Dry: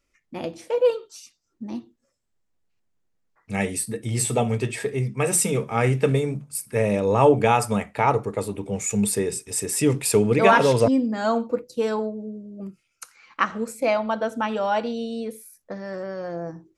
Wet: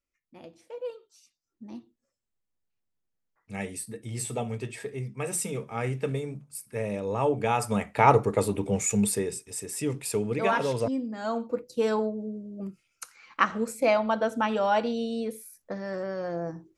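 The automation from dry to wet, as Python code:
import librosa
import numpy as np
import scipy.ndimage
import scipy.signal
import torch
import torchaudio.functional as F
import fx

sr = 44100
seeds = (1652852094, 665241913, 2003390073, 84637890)

y = fx.gain(x, sr, db=fx.line((1.12, -16.5), (1.69, -9.5), (7.35, -9.5), (8.11, 2.0), (8.66, 2.0), (9.6, -9.5), (11.17, -9.5), (11.89, -1.0)))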